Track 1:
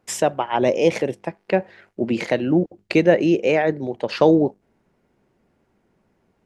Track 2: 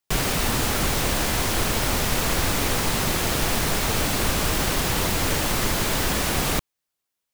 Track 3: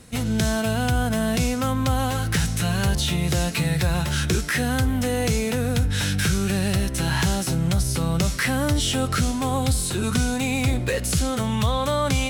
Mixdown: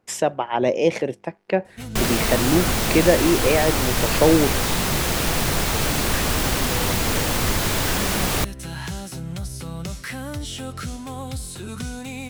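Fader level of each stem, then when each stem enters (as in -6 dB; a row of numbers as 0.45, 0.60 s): -1.5, +1.0, -9.0 dB; 0.00, 1.85, 1.65 s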